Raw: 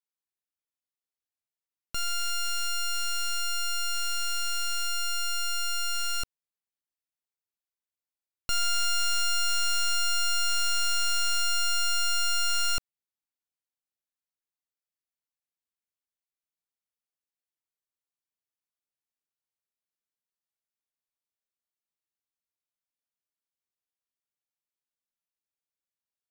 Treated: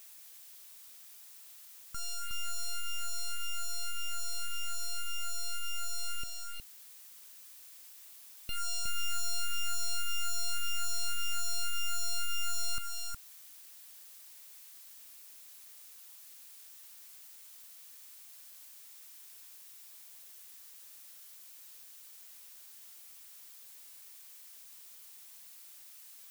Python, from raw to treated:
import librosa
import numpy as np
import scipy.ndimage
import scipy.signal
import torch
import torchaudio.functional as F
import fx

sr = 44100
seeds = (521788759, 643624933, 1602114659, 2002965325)

p1 = fx.phaser_stages(x, sr, stages=4, low_hz=260.0, high_hz=1200.0, hz=1.8, feedback_pct=25)
p2 = p1 + fx.echo_single(p1, sr, ms=364, db=-4.0, dry=0)
p3 = fx.dmg_noise_colour(p2, sr, seeds[0], colour='blue', level_db=-46.0)
y = p3 * librosa.db_to_amplitude(-7.0)